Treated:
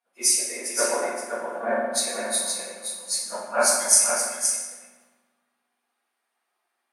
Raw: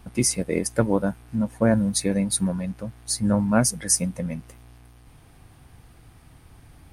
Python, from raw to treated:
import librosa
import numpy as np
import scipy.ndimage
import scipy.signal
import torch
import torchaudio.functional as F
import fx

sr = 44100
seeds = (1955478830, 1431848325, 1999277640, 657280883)

y = fx.phase_scramble(x, sr, seeds[0], window_ms=50)
y = scipy.signal.sosfilt(scipy.signal.bessel(4, 790.0, 'highpass', norm='mag', fs=sr, output='sos'), y)
y = y + 10.0 ** (-4.0 / 20.0) * np.pad(y, (int(521 * sr / 1000.0), 0))[:len(y)]
y = fx.rev_fdn(y, sr, rt60_s=2.0, lf_ratio=1.4, hf_ratio=0.6, size_ms=25.0, drr_db=-5.0)
y = fx.band_widen(y, sr, depth_pct=70)
y = y * 10.0 ** (-3.0 / 20.0)